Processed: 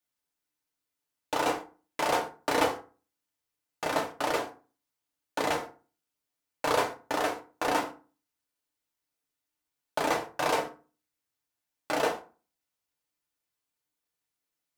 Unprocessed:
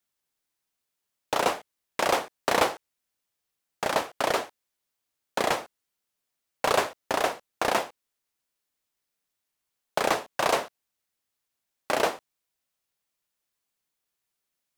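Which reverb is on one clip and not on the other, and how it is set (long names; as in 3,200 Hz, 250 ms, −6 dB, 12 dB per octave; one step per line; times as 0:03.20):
feedback delay network reverb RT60 0.36 s, low-frequency decay 1.25×, high-frequency decay 0.6×, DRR 0 dB
level −6 dB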